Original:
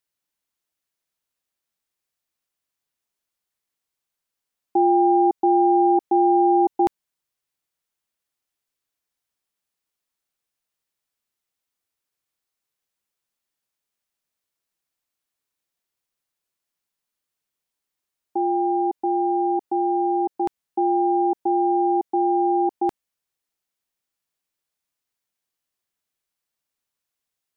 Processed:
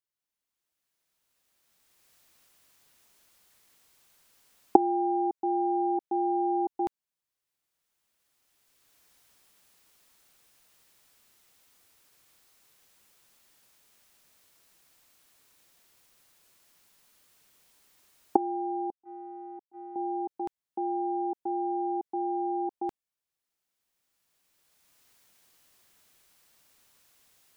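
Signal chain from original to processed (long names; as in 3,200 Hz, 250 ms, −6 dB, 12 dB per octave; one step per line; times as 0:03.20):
camcorder AGC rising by 14 dB per second
0:18.90–0:19.96: noise gate −19 dBFS, range −29 dB
level −10.5 dB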